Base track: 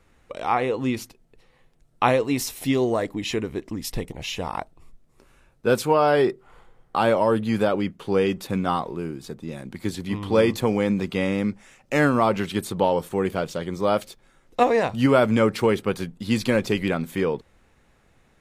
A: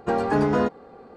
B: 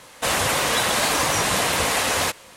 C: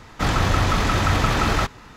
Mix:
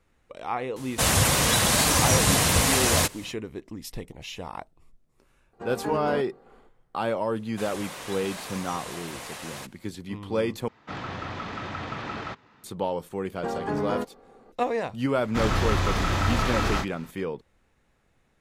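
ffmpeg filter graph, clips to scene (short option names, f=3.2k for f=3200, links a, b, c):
-filter_complex "[2:a]asplit=2[a][b];[1:a]asplit=2[c][d];[3:a]asplit=2[e][f];[0:a]volume=-7.5dB[g];[a]bass=f=250:g=13,treble=f=4k:g=6[h];[c]dynaudnorm=f=130:g=3:m=7dB[i];[e]highpass=130,lowpass=3.8k[j];[f]asplit=2[k][l];[l]adelay=31,volume=-3.5dB[m];[k][m]amix=inputs=2:normalize=0[n];[g]asplit=2[o][p];[o]atrim=end=10.684[q];[j]atrim=end=1.96,asetpts=PTS-STARTPTS,volume=-12.5dB[r];[p]atrim=start=12.636[s];[h]atrim=end=2.56,asetpts=PTS-STARTPTS,volume=-3.5dB,afade=t=in:d=0.004:c=hsin,afade=t=out:st=2.556:d=0.004:c=hsin,adelay=760[t];[i]atrim=end=1.16,asetpts=PTS-STARTPTS,volume=-16dB,afade=t=in:d=0.004:c=hsin,afade=t=out:st=1.156:d=0.004:c=hsin,adelay=243873S[u];[b]atrim=end=2.56,asetpts=PTS-STARTPTS,volume=-17.5dB,afade=t=in:d=0.004:c=hsin,afade=t=out:st=2.556:d=0.004:c=hsin,adelay=7350[v];[d]atrim=end=1.16,asetpts=PTS-STARTPTS,volume=-7.5dB,afade=t=in:d=0.004:c=hsin,afade=t=out:st=1.156:d=0.004:c=hsin,adelay=13360[w];[n]atrim=end=1.96,asetpts=PTS-STARTPTS,volume=-7dB,afade=t=in:d=0.004:c=hsin,afade=t=out:st=1.956:d=0.004:c=hsin,adelay=15150[x];[q][r]acrossfade=d=0.004:c1=hsin:c2=hsin[y];[y][s]acrossfade=d=0.004:c1=hsin:c2=hsin[z];[z][t][u][v][w][x]amix=inputs=6:normalize=0"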